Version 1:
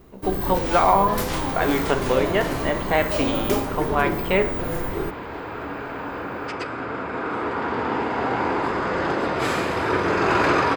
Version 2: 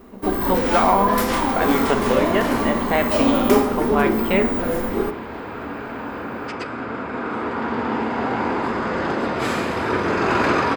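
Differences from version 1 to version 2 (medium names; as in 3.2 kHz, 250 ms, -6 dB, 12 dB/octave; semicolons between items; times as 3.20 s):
first sound: send on; master: add peaking EQ 230 Hz +10.5 dB 0.23 oct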